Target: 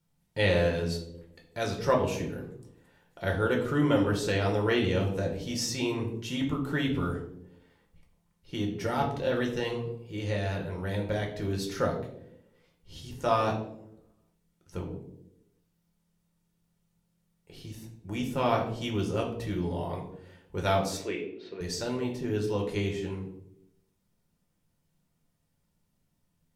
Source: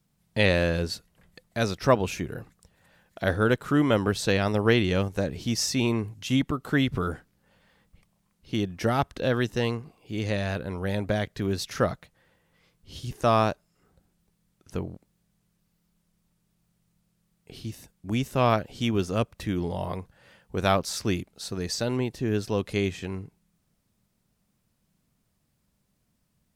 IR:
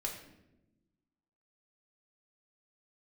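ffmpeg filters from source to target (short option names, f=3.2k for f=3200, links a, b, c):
-filter_complex "[0:a]asettb=1/sr,asplit=3[a][b][c];[a]atrim=end=20.974[d];[b]atrim=start=20.97:end=21.61,asetpts=PTS-STARTPTS,afade=t=in:d=0.004:c=qsin,afade=t=out:st=0.636:d=0.004:c=qsin,highpass=360,equalizer=f=440:t=q:w=4:g=7,equalizer=f=810:t=q:w=4:g=-9,equalizer=f=1.3k:t=q:w=4:g=-6,equalizer=f=2.3k:t=q:w=4:g=7,lowpass=f=3.1k:w=0.5412,lowpass=f=3.1k:w=1.3066[e];[c]atrim=start=21.606[f];[d][e]acrossfade=d=0.004:c1=hsin:c2=qsin[g];[g][f]acrossfade=d=0.004:c1=qsin:c2=hsin[h];[1:a]atrim=start_sample=2205,asetrate=66150,aresample=44100[i];[h][i]afir=irnorm=-1:irlink=0,volume=-1dB"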